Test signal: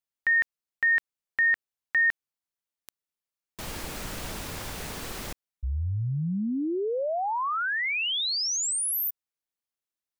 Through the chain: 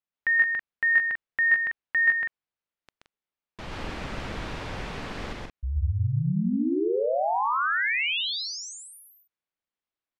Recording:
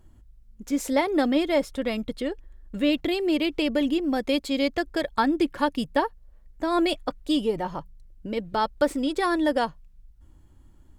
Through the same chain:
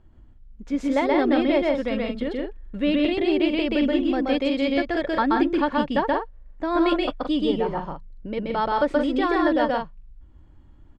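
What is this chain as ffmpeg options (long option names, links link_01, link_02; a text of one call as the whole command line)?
ffmpeg -i in.wav -filter_complex "[0:a]lowpass=3200,asplit=2[link_01][link_02];[link_02]aecho=0:1:128.3|172:0.891|0.501[link_03];[link_01][link_03]amix=inputs=2:normalize=0" out.wav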